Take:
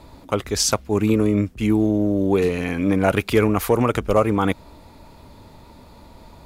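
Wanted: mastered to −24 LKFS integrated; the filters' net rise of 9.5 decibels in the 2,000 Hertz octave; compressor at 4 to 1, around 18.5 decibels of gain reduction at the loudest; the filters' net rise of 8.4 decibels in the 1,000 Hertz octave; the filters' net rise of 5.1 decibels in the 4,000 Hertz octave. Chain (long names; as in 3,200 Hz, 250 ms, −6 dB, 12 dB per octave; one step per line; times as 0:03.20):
parametric band 1,000 Hz +8 dB
parametric band 2,000 Hz +8.5 dB
parametric band 4,000 Hz +4.5 dB
downward compressor 4 to 1, threshold −32 dBFS
level +10 dB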